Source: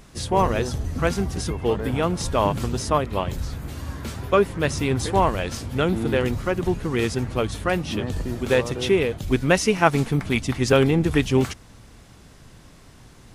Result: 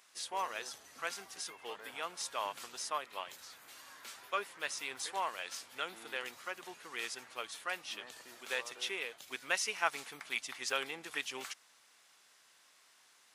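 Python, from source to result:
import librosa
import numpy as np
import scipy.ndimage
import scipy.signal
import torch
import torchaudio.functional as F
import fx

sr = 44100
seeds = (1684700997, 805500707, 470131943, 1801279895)

y = scipy.signal.sosfilt(scipy.signal.bessel(2, 1400.0, 'highpass', norm='mag', fs=sr, output='sos'), x)
y = y * 10.0 ** (-8.5 / 20.0)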